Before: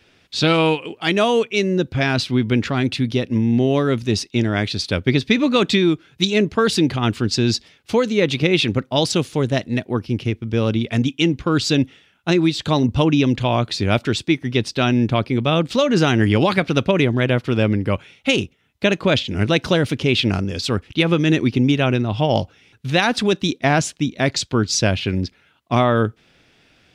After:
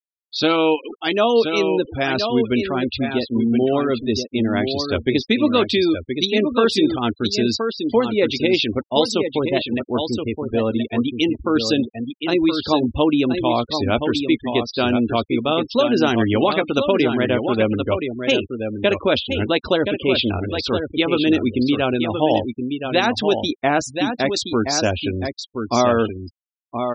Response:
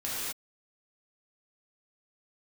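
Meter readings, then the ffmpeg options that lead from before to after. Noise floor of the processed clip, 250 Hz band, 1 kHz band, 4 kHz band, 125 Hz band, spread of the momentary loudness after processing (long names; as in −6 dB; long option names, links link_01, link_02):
−61 dBFS, −0.5 dB, +1.0 dB, −0.5 dB, −8.5 dB, 6 LU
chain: -filter_complex "[0:a]equalizer=frequency=125:width_type=o:width=1:gain=-7,equalizer=frequency=2000:width_type=o:width=1:gain=-5,equalizer=frequency=8000:width_type=o:width=1:gain=-5,acrusher=bits=5:mix=0:aa=0.000001,equalizer=frequency=160:width=3.9:gain=-12.5,asplit=2[link_01][link_02];[link_02]adelay=13,volume=-11.5dB[link_03];[link_01][link_03]amix=inputs=2:normalize=0,aecho=1:1:1023:0.473,afftfilt=real='re*gte(hypot(re,im),0.0447)':imag='im*gte(hypot(re,im),0.0447)':win_size=1024:overlap=0.75,volume=1dB"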